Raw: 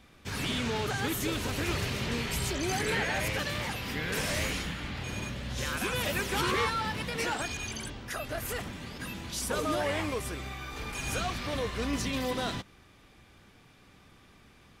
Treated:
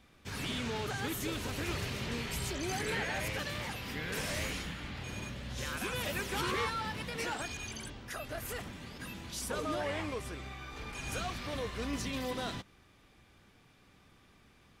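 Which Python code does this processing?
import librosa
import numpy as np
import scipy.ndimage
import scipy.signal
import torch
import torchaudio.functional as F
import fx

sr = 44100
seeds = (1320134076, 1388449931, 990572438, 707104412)

y = fx.high_shelf(x, sr, hz=10000.0, db=-10.0, at=(9.51, 11.12))
y = y * librosa.db_to_amplitude(-5.0)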